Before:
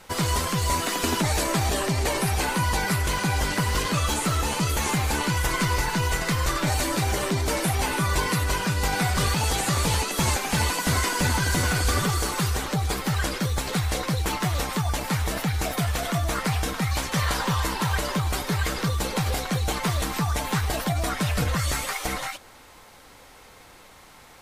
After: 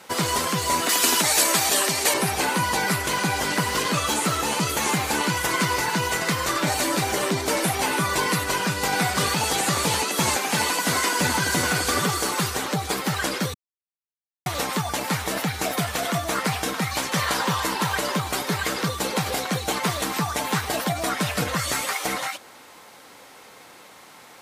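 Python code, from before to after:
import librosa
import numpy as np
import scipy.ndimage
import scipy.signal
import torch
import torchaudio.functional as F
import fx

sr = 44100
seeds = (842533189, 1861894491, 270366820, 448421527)

y = fx.tilt_eq(x, sr, slope=2.5, at=(0.89, 2.14))
y = fx.highpass(y, sr, hz=140.0, slope=6, at=(10.45, 11.21))
y = fx.edit(y, sr, fx.silence(start_s=13.54, length_s=0.92), tone=tone)
y = scipy.signal.sosfilt(scipy.signal.butter(2, 180.0, 'highpass', fs=sr, output='sos'), y)
y = F.gain(torch.from_numpy(y), 3.0).numpy()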